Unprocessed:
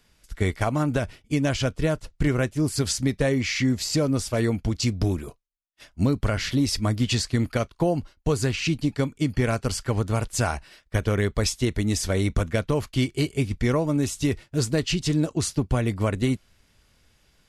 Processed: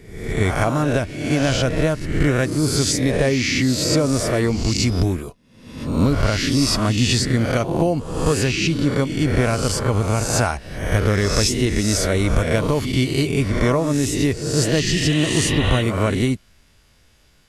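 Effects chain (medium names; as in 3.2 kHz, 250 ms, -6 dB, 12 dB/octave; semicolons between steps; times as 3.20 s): reverse spectral sustain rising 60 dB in 0.78 s; pre-echo 119 ms -12 dB; spectral replace 14.84–15.79 s, 1.6–4.1 kHz before; trim +3 dB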